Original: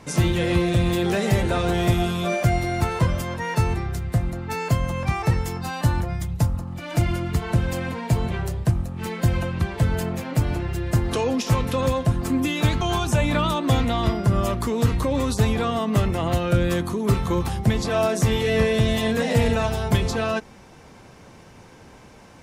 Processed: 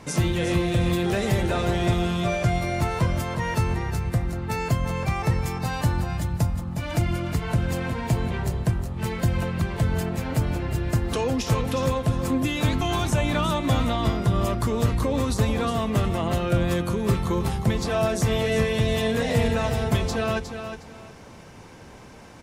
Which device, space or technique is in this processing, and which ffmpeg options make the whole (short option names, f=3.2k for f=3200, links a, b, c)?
parallel compression: -filter_complex "[0:a]asplit=2[a][b];[b]acompressor=threshold=-29dB:ratio=6,volume=-1dB[c];[a][c]amix=inputs=2:normalize=0,asettb=1/sr,asplit=3[d][e][f];[d]atrim=end=1.534[g];[e]atrim=start=1.53:end=2.49,asetpts=PTS-STARTPTS,afade=t=in:d=0.004:c=qsin,afade=t=out:st=0.956:d=0.004:c=qsin,lowpass=8.9k[h];[f]atrim=start=2.486[i];[g][h]acrossfade=d=0.004:c1=hsin:c2=qsin[j];[j][i]acrossfade=d=0.004:c1=qsin:c2=hsin,aecho=1:1:361|722|1083:0.376|0.0864|0.0199,volume=-4.5dB"